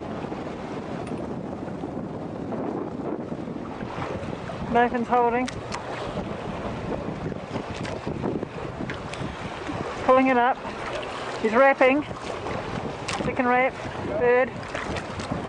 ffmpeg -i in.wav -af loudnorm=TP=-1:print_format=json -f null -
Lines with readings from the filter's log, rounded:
"input_i" : "-26.2",
"input_tp" : "-8.2",
"input_lra" : "9.0",
"input_thresh" : "-36.2",